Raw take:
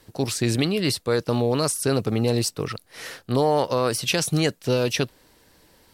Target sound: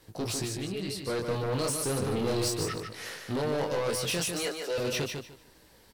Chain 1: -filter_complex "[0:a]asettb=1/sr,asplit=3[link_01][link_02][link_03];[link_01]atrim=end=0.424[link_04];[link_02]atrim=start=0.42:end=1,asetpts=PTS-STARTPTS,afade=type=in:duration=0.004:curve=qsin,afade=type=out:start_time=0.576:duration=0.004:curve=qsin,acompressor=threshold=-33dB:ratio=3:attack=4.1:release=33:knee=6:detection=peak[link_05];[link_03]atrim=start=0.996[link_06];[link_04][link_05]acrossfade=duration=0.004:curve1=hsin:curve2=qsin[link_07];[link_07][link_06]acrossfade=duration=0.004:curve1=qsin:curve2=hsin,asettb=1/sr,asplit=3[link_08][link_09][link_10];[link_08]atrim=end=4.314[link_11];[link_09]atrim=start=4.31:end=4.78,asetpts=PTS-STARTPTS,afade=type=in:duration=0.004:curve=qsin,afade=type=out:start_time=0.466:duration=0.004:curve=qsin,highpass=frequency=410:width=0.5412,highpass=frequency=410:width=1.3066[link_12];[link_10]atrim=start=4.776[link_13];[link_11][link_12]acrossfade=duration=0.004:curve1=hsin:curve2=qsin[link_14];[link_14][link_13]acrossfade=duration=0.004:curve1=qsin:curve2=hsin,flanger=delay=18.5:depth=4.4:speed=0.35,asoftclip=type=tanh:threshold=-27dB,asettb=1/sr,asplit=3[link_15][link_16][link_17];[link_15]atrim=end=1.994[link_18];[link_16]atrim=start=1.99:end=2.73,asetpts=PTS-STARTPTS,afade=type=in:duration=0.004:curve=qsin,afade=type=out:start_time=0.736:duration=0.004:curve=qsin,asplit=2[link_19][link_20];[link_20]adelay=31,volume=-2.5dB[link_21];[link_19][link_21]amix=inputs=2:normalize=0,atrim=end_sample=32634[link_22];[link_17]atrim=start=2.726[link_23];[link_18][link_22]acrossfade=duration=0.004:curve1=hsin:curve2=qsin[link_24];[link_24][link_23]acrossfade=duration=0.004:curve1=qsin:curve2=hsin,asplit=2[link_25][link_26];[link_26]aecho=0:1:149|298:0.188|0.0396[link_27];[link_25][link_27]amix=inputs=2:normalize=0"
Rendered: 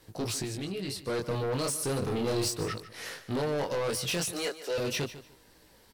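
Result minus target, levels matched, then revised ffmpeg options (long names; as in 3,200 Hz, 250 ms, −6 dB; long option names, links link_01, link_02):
echo-to-direct −9 dB
-filter_complex "[0:a]asettb=1/sr,asplit=3[link_01][link_02][link_03];[link_01]atrim=end=0.424[link_04];[link_02]atrim=start=0.42:end=1,asetpts=PTS-STARTPTS,afade=type=in:duration=0.004:curve=qsin,afade=type=out:start_time=0.576:duration=0.004:curve=qsin,acompressor=threshold=-33dB:ratio=3:attack=4.1:release=33:knee=6:detection=peak[link_05];[link_03]atrim=start=0.996[link_06];[link_04][link_05]acrossfade=duration=0.004:curve1=hsin:curve2=qsin[link_07];[link_07][link_06]acrossfade=duration=0.004:curve1=qsin:curve2=hsin,asettb=1/sr,asplit=3[link_08][link_09][link_10];[link_08]atrim=end=4.314[link_11];[link_09]atrim=start=4.31:end=4.78,asetpts=PTS-STARTPTS,afade=type=in:duration=0.004:curve=qsin,afade=type=out:start_time=0.466:duration=0.004:curve=qsin,highpass=frequency=410:width=0.5412,highpass=frequency=410:width=1.3066[link_12];[link_10]atrim=start=4.776[link_13];[link_11][link_12]acrossfade=duration=0.004:curve1=hsin:curve2=qsin[link_14];[link_14][link_13]acrossfade=duration=0.004:curve1=qsin:curve2=hsin,flanger=delay=18.5:depth=4.4:speed=0.35,asoftclip=type=tanh:threshold=-27dB,asettb=1/sr,asplit=3[link_15][link_16][link_17];[link_15]atrim=end=1.994[link_18];[link_16]atrim=start=1.99:end=2.73,asetpts=PTS-STARTPTS,afade=type=in:duration=0.004:curve=qsin,afade=type=out:start_time=0.736:duration=0.004:curve=qsin,asplit=2[link_19][link_20];[link_20]adelay=31,volume=-2.5dB[link_21];[link_19][link_21]amix=inputs=2:normalize=0,atrim=end_sample=32634[link_22];[link_17]atrim=start=2.726[link_23];[link_18][link_22]acrossfade=duration=0.004:curve1=hsin:curve2=qsin[link_24];[link_24][link_23]acrossfade=duration=0.004:curve1=qsin:curve2=hsin,asplit=2[link_25][link_26];[link_26]aecho=0:1:149|298|447:0.531|0.111|0.0234[link_27];[link_25][link_27]amix=inputs=2:normalize=0"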